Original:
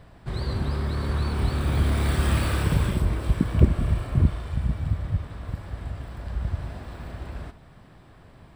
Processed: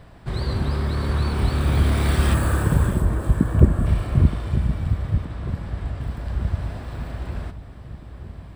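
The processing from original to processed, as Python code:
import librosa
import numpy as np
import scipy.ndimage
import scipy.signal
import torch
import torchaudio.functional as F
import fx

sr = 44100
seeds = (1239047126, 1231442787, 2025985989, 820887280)

y = fx.spec_box(x, sr, start_s=2.34, length_s=1.52, low_hz=1900.0, high_hz=6200.0, gain_db=-9)
y = fx.high_shelf(y, sr, hz=9900.0, db=-7.0, at=(5.25, 6.01))
y = fx.echo_wet_lowpass(y, sr, ms=923, feedback_pct=64, hz=620.0, wet_db=-14)
y = y * 10.0 ** (3.5 / 20.0)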